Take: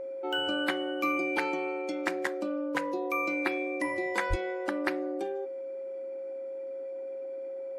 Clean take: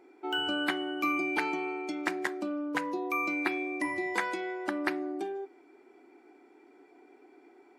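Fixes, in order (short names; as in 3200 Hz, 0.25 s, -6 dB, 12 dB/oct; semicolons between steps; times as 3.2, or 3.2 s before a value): notch 540 Hz, Q 30; de-plosive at 4.29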